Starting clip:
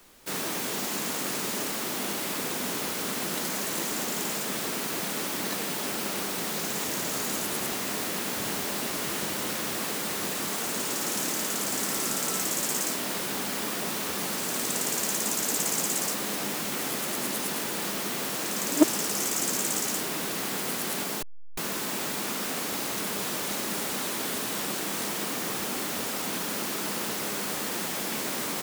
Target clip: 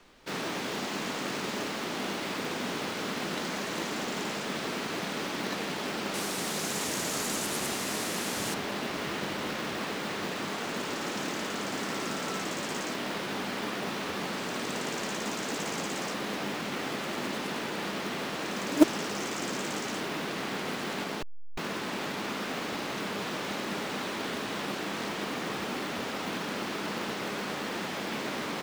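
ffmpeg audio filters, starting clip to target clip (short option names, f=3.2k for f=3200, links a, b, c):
-af "asetnsamples=n=441:p=0,asendcmd='6.14 lowpass f 10000;8.54 lowpass f 3700',lowpass=4.3k,acrusher=bits=4:mode=log:mix=0:aa=0.000001"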